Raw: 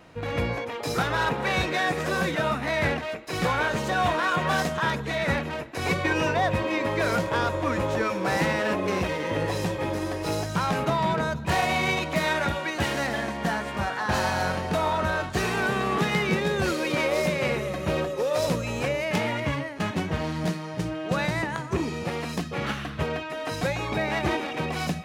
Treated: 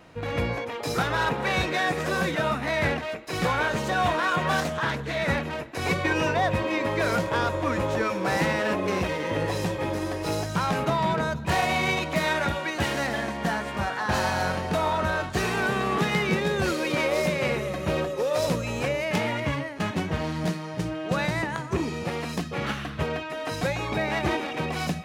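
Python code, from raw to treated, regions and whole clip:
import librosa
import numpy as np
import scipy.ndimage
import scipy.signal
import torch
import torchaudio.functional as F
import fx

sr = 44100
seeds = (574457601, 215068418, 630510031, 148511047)

y = fx.chain(x, sr, fx.notch_comb(f0_hz=190.0),
    fx.doppler_dist(depth_ms=0.26), at=(4.6, 5.17))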